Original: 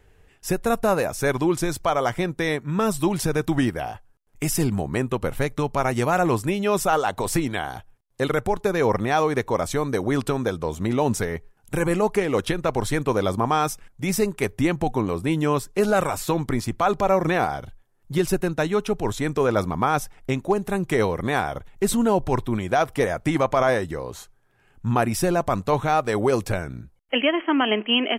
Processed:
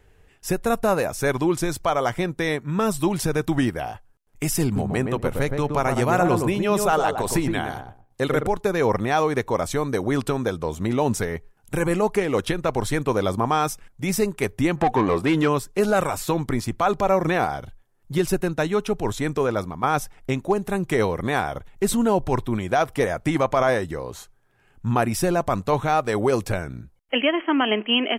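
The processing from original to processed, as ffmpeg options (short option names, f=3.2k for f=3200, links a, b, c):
-filter_complex "[0:a]asettb=1/sr,asplit=3[a][b][c];[a]atrim=end=4.644[d];[b]atrim=start=4.64:end=8.47,asetpts=PTS-STARTPTS,afade=t=in:d=0.004:c=qsin,afade=t=out:st=3.826:d=0.004:c=qsin,asplit=2[e][f];[f]adelay=117,lowpass=f=960:p=1,volume=-3.5dB,asplit=2[g][h];[h]adelay=117,lowpass=f=960:p=1,volume=0.21,asplit=2[i][j];[j]adelay=117,lowpass=f=960:p=1,volume=0.21[k];[e][g][i][k]amix=inputs=4:normalize=0,atrim=end_sample=168903[l];[c]atrim=start=8.466[m];[d][l]acrossfade=d=0.004:c1=hsin:c2=qsin[n];[n][m]acrossfade=d=0.004:c1=qsin:c2=hsin,asplit=3[o][p][q];[o]afade=t=out:st=14.76:d=0.02[r];[p]asplit=2[s][t];[t]highpass=f=720:p=1,volume=20dB,asoftclip=type=tanh:threshold=-9.5dB[u];[s][u]amix=inputs=2:normalize=0,lowpass=f=1.8k:p=1,volume=-6dB,afade=t=in:st=14.76:d=0.02,afade=t=out:st=15.47:d=0.02[v];[q]afade=t=in:st=15.47:d=0.02[w];[r][v][w]amix=inputs=3:normalize=0,asplit=2[x][y];[x]atrim=end=19.83,asetpts=PTS-STARTPTS,afade=t=out:st=19.32:d=0.51:silence=0.354813[z];[y]atrim=start=19.83,asetpts=PTS-STARTPTS,afade=t=in:d=0.004:c=hsin:silence=0.354813[aa];[z][aa]concat=n=2:v=0:a=1"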